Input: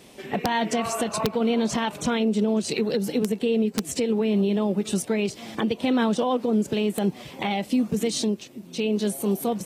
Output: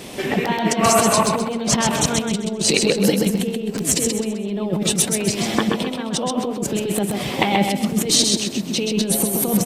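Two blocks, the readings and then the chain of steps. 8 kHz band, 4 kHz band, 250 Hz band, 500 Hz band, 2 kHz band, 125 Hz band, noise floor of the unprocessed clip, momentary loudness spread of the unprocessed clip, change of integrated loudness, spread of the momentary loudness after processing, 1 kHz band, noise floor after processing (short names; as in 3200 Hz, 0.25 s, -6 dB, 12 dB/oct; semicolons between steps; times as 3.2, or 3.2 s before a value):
+14.5 dB, +11.0 dB, +3.0 dB, +3.0 dB, +7.0 dB, +7.0 dB, -45 dBFS, 6 LU, +5.5 dB, 8 LU, +6.5 dB, -28 dBFS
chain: negative-ratio compressor -28 dBFS, ratio -0.5; feedback echo 0.13 s, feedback 34%, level -4 dB; gain +8.5 dB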